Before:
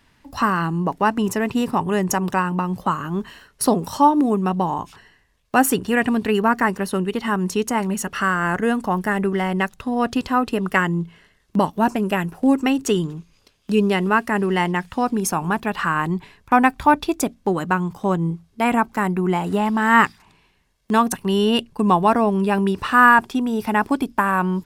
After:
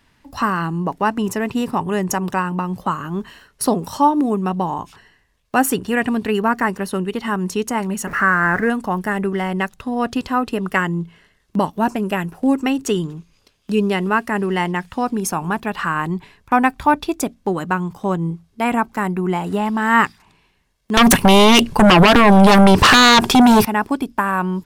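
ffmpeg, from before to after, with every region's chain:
ffmpeg -i in.wav -filter_complex "[0:a]asettb=1/sr,asplit=3[link_01][link_02][link_03];[link_01]atrim=end=8.074[link_04];[link_02]atrim=start=8.07:end=8.7,asetpts=PTS-STARTPTS,afade=type=in:duration=0.004:curve=qsin,afade=type=out:start_time=0.626:duration=0.004:curve=qsin,aeval=exprs='val(0)+0.5*0.0447*sgn(val(0))':channel_layout=same,highshelf=frequency=2500:width_type=q:width=3:gain=-9.5[link_05];[link_03]atrim=start=8.696[link_06];[link_04][link_05]acrossfade=duration=0.004:curve1=hsin:curve2=qsin[link_07];[link_07][link_06]acrossfade=duration=0.004:curve1=qsin:curve2=hsin,asettb=1/sr,asplit=3[link_08][link_09][link_10];[link_08]atrim=end=20.974[link_11];[link_09]atrim=start=20.97:end=23.65,asetpts=PTS-STARTPTS,afade=type=in:duration=0.004:curve=qsin,afade=type=out:start_time=2.676:duration=0.004:curve=qsin,acompressor=threshold=-19dB:ratio=6:attack=3.2:release=140:knee=1:detection=peak,aeval=exprs='0.501*sin(PI/2*7.08*val(0)/0.501)':channel_layout=same[link_12];[link_10]atrim=start=23.646[link_13];[link_11][link_12]acrossfade=duration=0.004:curve1=hsin:curve2=qsin[link_14];[link_14][link_13]acrossfade=duration=0.004:curve1=qsin:curve2=hsin" out.wav

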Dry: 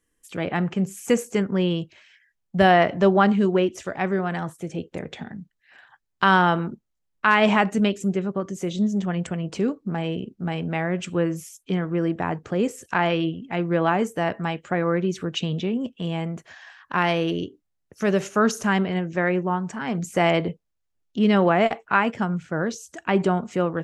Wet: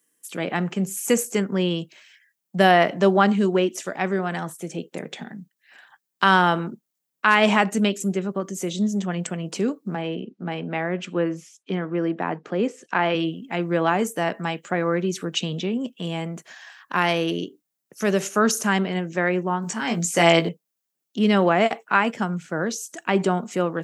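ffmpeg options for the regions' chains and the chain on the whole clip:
ffmpeg -i in.wav -filter_complex "[0:a]asettb=1/sr,asplit=3[link_01][link_02][link_03];[link_01]atrim=end=9.954[link_04];[link_02]atrim=start=9.95:end=13.15,asetpts=PTS-STARTPTS,afade=type=in:duration=0.004:curve=qsin,afade=type=out:start_time=3.196:duration=0.004:curve=qsin,highpass=160,lowpass=5600,aemphasis=mode=reproduction:type=50fm[link_05];[link_03]atrim=start=13.146[link_06];[link_04][link_05]acrossfade=duration=0.004:curve1=hsin:curve2=qsin[link_07];[link_07][link_06]acrossfade=duration=0.004:curve1=qsin:curve2=hsin,asettb=1/sr,asplit=3[link_08][link_09][link_10];[link_08]atrim=end=19.624[link_11];[link_09]atrim=start=19.62:end=20.49,asetpts=PTS-STARTPTS,afade=type=in:duration=0.004:curve=qsin,afade=type=out:start_time=0.866:duration=0.004:curve=qsin,acrossover=split=7800[link_12][link_13];[link_13]acompressor=threshold=-58dB:ratio=4:attack=1:release=60[link_14];[link_12][link_14]amix=inputs=2:normalize=0,highshelf=frequency=2900:gain=8.5,asplit=2[link_15][link_16];[link_16]adelay=18,volume=-4.5dB[link_17];[link_15][link_17]amix=inputs=2:normalize=0,atrim=end_sample=38367[link_18];[link_10]atrim=start=20.486[link_19];[link_11][link_18]acrossfade=duration=0.004:curve1=hsin:curve2=qsin[link_20];[link_20][link_19]acrossfade=duration=0.004:curve1=qsin:curve2=hsin,highpass=frequency=160:width=0.5412,highpass=frequency=160:width=1.3066,aemphasis=mode=production:type=50kf" out.wav

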